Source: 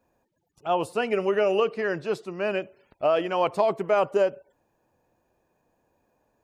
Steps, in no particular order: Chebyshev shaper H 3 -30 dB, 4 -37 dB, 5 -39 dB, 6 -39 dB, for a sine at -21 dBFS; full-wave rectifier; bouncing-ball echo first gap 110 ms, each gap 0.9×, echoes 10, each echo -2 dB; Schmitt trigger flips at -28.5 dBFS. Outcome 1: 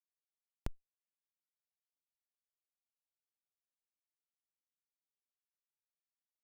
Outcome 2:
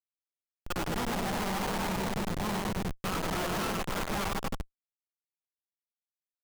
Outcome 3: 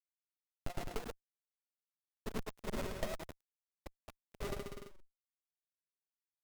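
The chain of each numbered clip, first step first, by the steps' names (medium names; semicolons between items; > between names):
bouncing-ball echo > full-wave rectifier > Schmitt trigger > Chebyshev shaper; full-wave rectifier > Chebyshev shaper > bouncing-ball echo > Schmitt trigger; Schmitt trigger > full-wave rectifier > bouncing-ball echo > Chebyshev shaper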